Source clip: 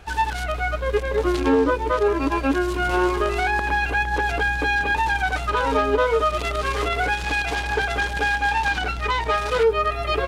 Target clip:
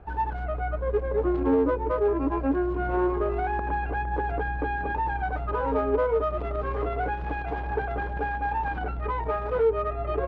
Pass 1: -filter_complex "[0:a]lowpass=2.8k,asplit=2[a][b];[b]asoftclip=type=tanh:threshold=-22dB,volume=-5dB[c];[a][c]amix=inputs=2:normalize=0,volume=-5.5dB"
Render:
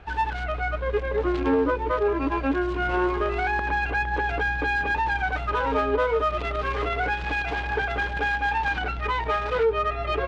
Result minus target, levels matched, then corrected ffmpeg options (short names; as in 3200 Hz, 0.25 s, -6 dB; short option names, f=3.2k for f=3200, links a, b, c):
2000 Hz band +7.0 dB
-filter_complex "[0:a]lowpass=930,asplit=2[a][b];[b]asoftclip=type=tanh:threshold=-22dB,volume=-5dB[c];[a][c]amix=inputs=2:normalize=0,volume=-5.5dB"